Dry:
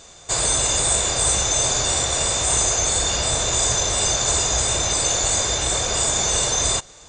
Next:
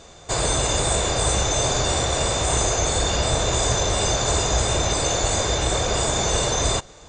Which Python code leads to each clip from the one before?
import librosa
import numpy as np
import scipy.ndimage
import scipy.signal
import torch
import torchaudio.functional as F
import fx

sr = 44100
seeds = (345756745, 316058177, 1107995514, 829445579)

y = fx.curve_eq(x, sr, hz=(410.0, 4300.0, 9300.0), db=(0, -7, -12))
y = y * 10.0 ** (4.5 / 20.0)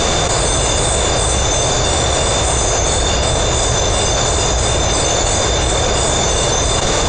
y = fx.env_flatten(x, sr, amount_pct=100)
y = y * 10.0 ** (3.0 / 20.0)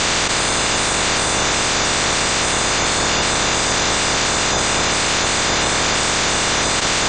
y = fx.spec_clip(x, sr, under_db=22)
y = fx.air_absorb(y, sr, metres=54.0)
y = y * 10.0 ** (-1.0 / 20.0)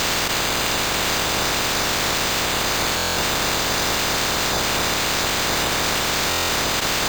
y = np.repeat(x[::4], 4)[:len(x)]
y = fx.buffer_glitch(y, sr, at_s=(2.96, 6.29), block=1024, repeats=8)
y = y * 10.0 ** (-3.5 / 20.0)